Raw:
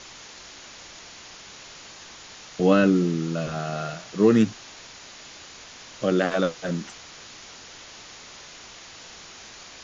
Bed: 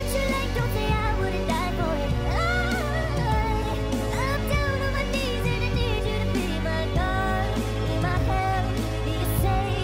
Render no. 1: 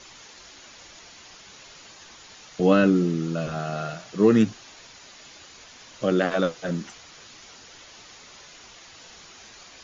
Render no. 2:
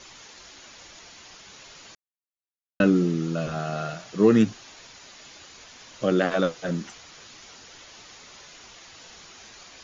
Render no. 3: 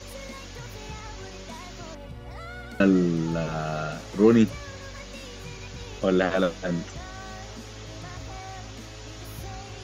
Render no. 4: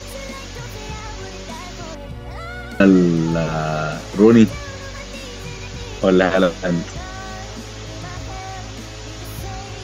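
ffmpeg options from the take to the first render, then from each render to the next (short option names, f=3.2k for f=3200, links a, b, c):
-af "afftdn=nr=6:nf=-45"
-filter_complex "[0:a]asplit=3[a][b][c];[a]atrim=end=1.95,asetpts=PTS-STARTPTS,afade=t=out:st=1.946:d=0.004:c=hsin[d];[b]atrim=start=1.95:end=2.8,asetpts=PTS-STARTPTS,volume=0[e];[c]atrim=start=2.8,asetpts=PTS-STARTPTS,afade=t=in:d=0.004:c=hsin[f];[d][e][f]concat=n=3:v=0:a=1"
-filter_complex "[1:a]volume=-15.5dB[a];[0:a][a]amix=inputs=2:normalize=0"
-af "volume=8dB,alimiter=limit=-1dB:level=0:latency=1"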